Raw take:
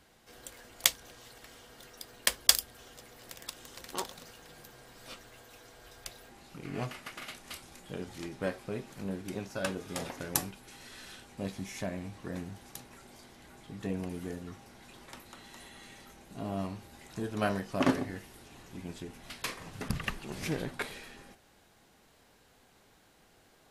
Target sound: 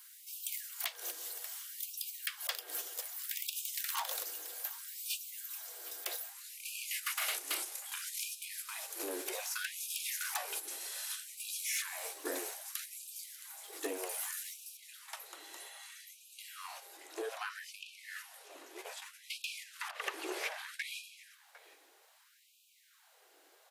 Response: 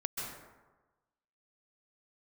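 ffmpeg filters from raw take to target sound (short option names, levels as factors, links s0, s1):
-filter_complex "[0:a]aemphasis=mode=production:type=50fm,agate=range=0.316:threshold=0.00794:ratio=16:detection=peak,acrossover=split=3400[s0][s1];[s1]acompressor=threshold=0.00562:ratio=4:attack=1:release=60[s2];[s0][s2]amix=inputs=2:normalize=0,asetnsamples=n=441:p=0,asendcmd='14.77 highshelf g -4;16.97 highshelf g -10',highshelf=f=5800:g=7.5,acompressor=threshold=0.0141:ratio=6,asoftclip=type=tanh:threshold=0.0168,aecho=1:1:754:0.0891,afftfilt=real='re*gte(b*sr/1024,280*pow(2400/280,0.5+0.5*sin(2*PI*0.63*pts/sr)))':imag='im*gte(b*sr/1024,280*pow(2400/280,0.5+0.5*sin(2*PI*0.63*pts/sr)))':win_size=1024:overlap=0.75,volume=2.82"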